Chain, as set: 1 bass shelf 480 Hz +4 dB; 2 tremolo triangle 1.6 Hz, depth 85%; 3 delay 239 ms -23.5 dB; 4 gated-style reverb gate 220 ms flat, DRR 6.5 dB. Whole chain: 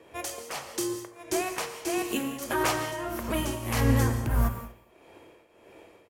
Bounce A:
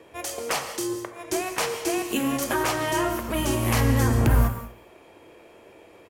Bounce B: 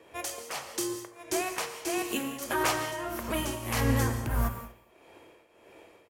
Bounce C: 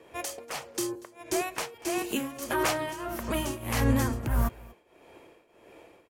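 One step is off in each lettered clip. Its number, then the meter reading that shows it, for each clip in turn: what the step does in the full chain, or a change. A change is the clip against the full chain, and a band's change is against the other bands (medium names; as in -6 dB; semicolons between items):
2, loudness change +4.5 LU; 1, momentary loudness spread change -2 LU; 4, momentary loudness spread change -2 LU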